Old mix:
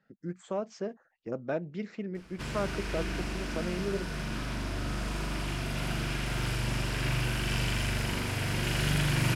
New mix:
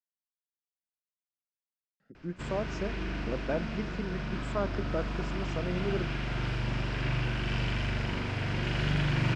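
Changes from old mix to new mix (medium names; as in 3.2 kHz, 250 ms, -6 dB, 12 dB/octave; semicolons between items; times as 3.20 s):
speech: entry +2.00 s; background: add distance through air 170 m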